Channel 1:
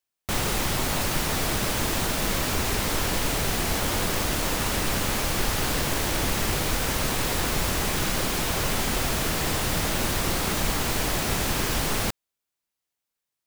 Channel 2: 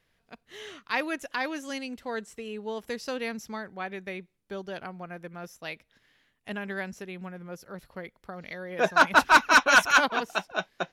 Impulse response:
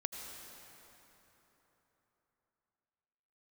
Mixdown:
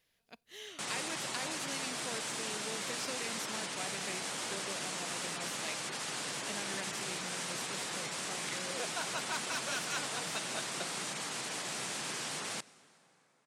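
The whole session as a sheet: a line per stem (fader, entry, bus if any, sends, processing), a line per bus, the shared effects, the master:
-13.5 dB, 0.50 s, send -15 dB, spectral gate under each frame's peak -30 dB strong; elliptic band-pass 140–9000 Hz, stop band 40 dB
-4.5 dB, 0.00 s, no send, peaking EQ 1.4 kHz -5.5 dB 1.3 oct; compression, threshold -34 dBFS, peak gain reduction 16.5 dB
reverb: on, RT60 3.8 s, pre-delay 73 ms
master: tilt EQ +2 dB/octave

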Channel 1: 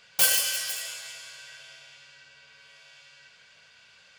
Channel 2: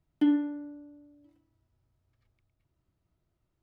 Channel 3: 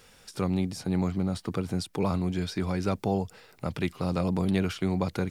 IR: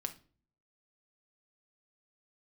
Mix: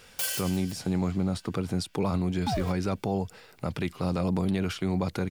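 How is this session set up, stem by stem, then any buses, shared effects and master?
-2.0 dB, 0.00 s, no send, auto duck -16 dB, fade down 0.80 s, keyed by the third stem
-2.5 dB, 2.25 s, no send, small samples zeroed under -30.5 dBFS; ring modulator with a swept carrier 480 Hz, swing 80%, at 0.98 Hz
+1.5 dB, 0.00 s, no send, none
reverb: none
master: peak limiter -18.5 dBFS, peak gain reduction 5.5 dB

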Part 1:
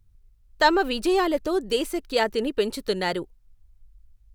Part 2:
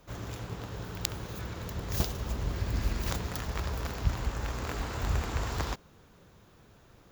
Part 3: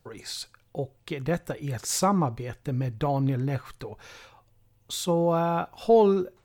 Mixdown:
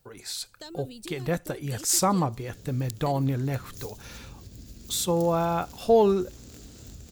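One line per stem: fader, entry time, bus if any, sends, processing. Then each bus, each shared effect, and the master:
-16.5 dB, 0.00 s, muted 2.35–3.06 s, bus A, no send, gain riding
-16.0 dB, 1.85 s, bus A, no send, peaking EQ 980 Hz -5 dB
-3.5 dB, 0.00 s, no bus, no send, none
bus A: 0.0 dB, graphic EQ 125/250/1000/2000/4000/8000 Hz +3/+8/-9/-6/+3/+7 dB; compression, threshold -44 dBFS, peak gain reduction 11.5 dB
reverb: none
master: treble shelf 5.8 kHz +9.5 dB; level rider gain up to 3 dB

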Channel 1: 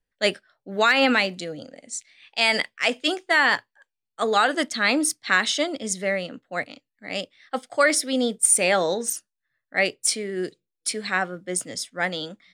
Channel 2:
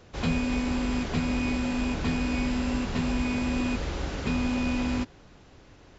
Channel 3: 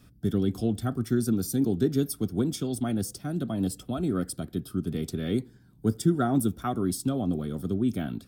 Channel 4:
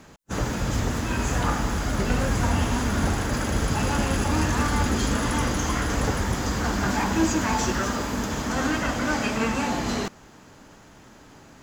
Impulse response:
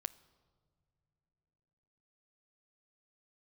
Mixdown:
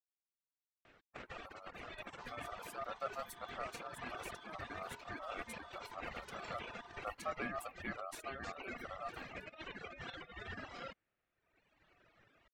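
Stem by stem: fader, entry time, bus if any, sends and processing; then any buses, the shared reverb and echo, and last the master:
mute
-9.5 dB, 2.05 s, no send, bass shelf 100 Hz +10.5 dB; peak limiter -22.5 dBFS, peak gain reduction 11.5 dB
2.12 s -17.5 dB -> 2.91 s -9 dB, 1.20 s, no send, none
-11.0 dB, 0.85 s, no send, reverb removal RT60 2 s; low-pass 3.4 kHz 12 dB/octave; compressor with a negative ratio -30 dBFS, ratio -0.5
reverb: none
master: reverb removal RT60 1.1 s; tone controls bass -15 dB, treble -7 dB; ring modulator 950 Hz

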